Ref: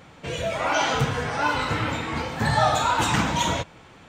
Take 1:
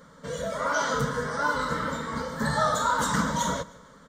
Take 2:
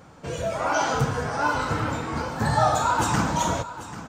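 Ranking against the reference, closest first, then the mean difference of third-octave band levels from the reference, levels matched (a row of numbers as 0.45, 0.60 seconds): 2, 1; 2.5, 4.0 decibels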